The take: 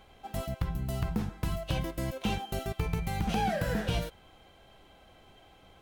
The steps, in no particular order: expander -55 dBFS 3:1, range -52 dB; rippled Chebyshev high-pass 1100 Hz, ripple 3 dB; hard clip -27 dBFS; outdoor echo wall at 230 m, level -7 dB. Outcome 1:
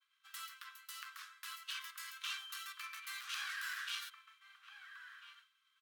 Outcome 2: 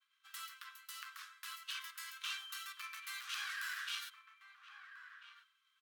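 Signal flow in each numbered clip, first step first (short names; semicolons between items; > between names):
outdoor echo > hard clip > rippled Chebyshev high-pass > expander; hard clip > rippled Chebyshev high-pass > expander > outdoor echo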